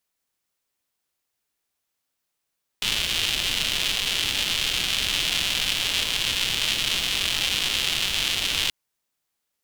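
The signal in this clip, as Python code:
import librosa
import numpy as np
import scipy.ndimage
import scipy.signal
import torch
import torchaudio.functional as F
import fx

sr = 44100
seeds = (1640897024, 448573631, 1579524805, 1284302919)

y = fx.rain(sr, seeds[0], length_s=5.88, drops_per_s=290.0, hz=3100.0, bed_db=-11)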